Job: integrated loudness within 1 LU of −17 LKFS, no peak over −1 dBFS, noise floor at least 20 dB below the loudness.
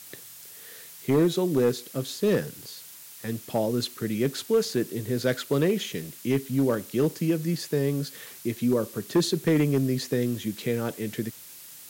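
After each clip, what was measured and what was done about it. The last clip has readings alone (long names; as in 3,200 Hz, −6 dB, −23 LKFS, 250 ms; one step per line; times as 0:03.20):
share of clipped samples 0.7%; peaks flattened at −15.5 dBFS; background noise floor −46 dBFS; target noise floor −47 dBFS; integrated loudness −27.0 LKFS; sample peak −15.5 dBFS; target loudness −17.0 LKFS
→ clipped peaks rebuilt −15.5 dBFS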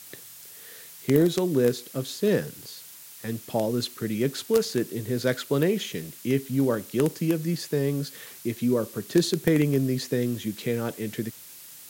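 share of clipped samples 0.0%; background noise floor −46 dBFS; target noise floor −47 dBFS
→ broadband denoise 6 dB, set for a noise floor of −46 dBFS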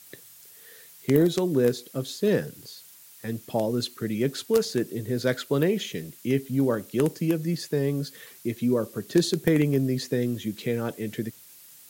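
background noise floor −50 dBFS; integrated loudness −26.5 LKFS; sample peak −6.5 dBFS; target loudness −17.0 LKFS
→ level +9.5 dB
brickwall limiter −1 dBFS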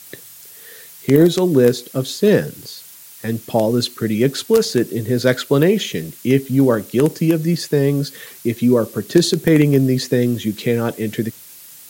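integrated loudness −17.5 LKFS; sample peak −1.0 dBFS; background noise floor −41 dBFS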